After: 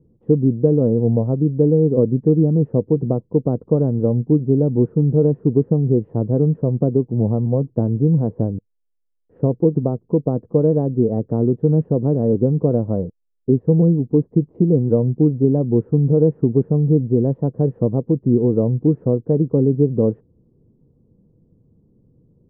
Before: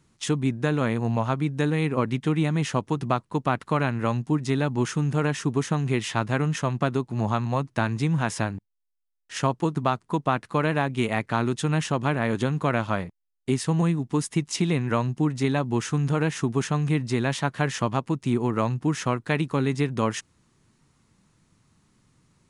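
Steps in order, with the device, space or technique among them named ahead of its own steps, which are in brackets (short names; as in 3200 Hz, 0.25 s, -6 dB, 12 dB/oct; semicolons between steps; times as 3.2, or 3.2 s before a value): under water (LPF 500 Hz 24 dB/oct; bell 480 Hz +9 dB 0.28 oct); gain +8 dB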